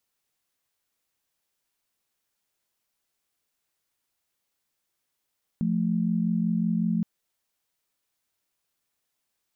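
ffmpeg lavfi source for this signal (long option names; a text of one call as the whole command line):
ffmpeg -f lavfi -i "aevalsrc='0.0562*(sin(2*PI*174.61*t)+sin(2*PI*220*t))':duration=1.42:sample_rate=44100" out.wav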